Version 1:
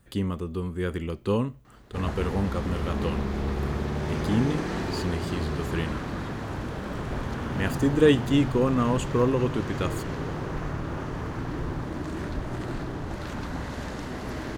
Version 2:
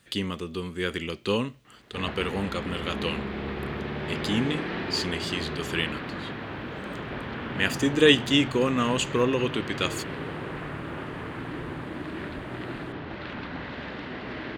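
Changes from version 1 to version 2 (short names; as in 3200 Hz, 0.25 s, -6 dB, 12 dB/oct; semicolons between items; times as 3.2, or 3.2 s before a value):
background: add air absorption 400 m; master: add weighting filter D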